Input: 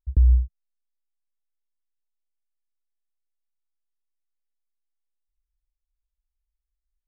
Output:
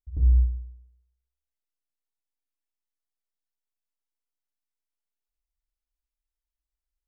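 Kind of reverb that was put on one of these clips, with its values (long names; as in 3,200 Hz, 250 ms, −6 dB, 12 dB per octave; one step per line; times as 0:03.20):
feedback delay network reverb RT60 1.1 s, low-frequency decay 0.7×, high-frequency decay 0.75×, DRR −5.5 dB
level −10.5 dB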